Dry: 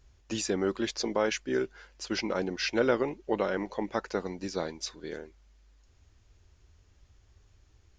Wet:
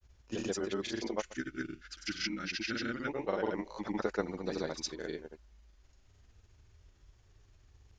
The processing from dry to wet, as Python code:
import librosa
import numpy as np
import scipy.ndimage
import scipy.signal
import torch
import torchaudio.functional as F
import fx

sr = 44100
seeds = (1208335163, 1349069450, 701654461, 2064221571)

y = fx.granulator(x, sr, seeds[0], grain_ms=100.0, per_s=20.0, spray_ms=100.0, spread_st=0)
y = fx.spec_box(y, sr, start_s=1.39, length_s=1.7, low_hz=350.0, high_hz=1200.0, gain_db=-17)
y = fx.rider(y, sr, range_db=3, speed_s=0.5)
y = fx.granulator(y, sr, seeds[1], grain_ms=100.0, per_s=20.0, spray_ms=100.0, spread_st=0)
y = F.gain(torch.from_numpy(y), -1.5).numpy()